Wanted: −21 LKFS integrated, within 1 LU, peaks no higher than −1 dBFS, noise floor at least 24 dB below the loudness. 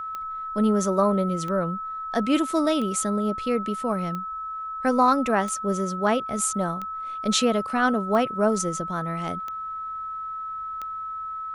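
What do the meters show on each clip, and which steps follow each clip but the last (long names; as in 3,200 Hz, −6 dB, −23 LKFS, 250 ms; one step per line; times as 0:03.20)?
number of clicks 9; interfering tone 1,300 Hz; level of the tone −30 dBFS; integrated loudness −25.0 LKFS; sample peak −8.5 dBFS; target loudness −21.0 LKFS
→ click removal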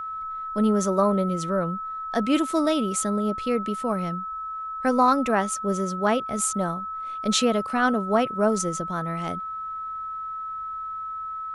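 number of clicks 0; interfering tone 1,300 Hz; level of the tone −30 dBFS
→ notch filter 1,300 Hz, Q 30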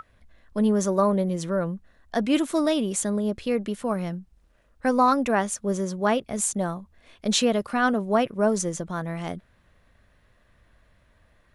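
interfering tone none found; integrated loudness −25.0 LKFS; sample peak −9.0 dBFS; target loudness −21.0 LKFS
→ level +4 dB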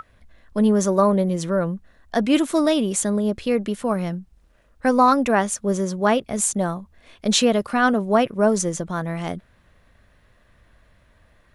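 integrated loudness −21.0 LKFS; sample peak −5.0 dBFS; background noise floor −58 dBFS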